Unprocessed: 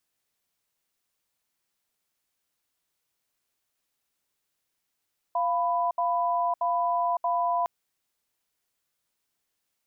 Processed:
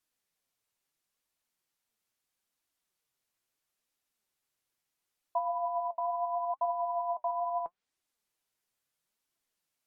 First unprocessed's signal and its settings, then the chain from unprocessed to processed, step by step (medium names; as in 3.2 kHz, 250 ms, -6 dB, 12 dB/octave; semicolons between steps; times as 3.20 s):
cadence 695 Hz, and 994 Hz, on 0.56 s, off 0.07 s, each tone -25.5 dBFS 2.31 s
low-pass that closes with the level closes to 850 Hz, closed at -22.5 dBFS; flange 0.75 Hz, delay 2.6 ms, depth 6.9 ms, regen +56%